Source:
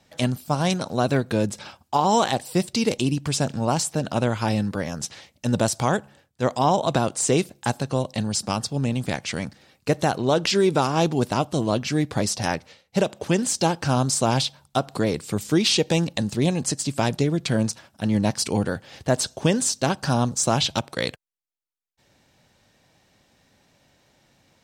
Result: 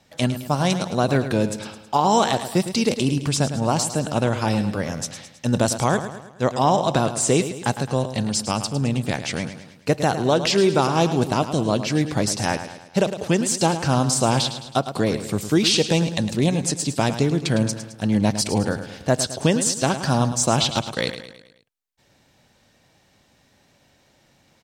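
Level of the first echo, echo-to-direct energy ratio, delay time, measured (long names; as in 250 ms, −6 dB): −11.0 dB, −10.0 dB, 107 ms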